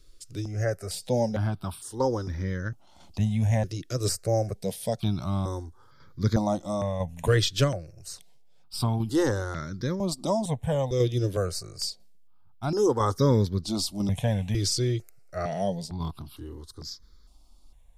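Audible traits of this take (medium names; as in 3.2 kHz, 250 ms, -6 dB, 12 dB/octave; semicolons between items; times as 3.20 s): tremolo saw down 1 Hz, depth 45%; notches that jump at a steady rate 2.2 Hz 220–2700 Hz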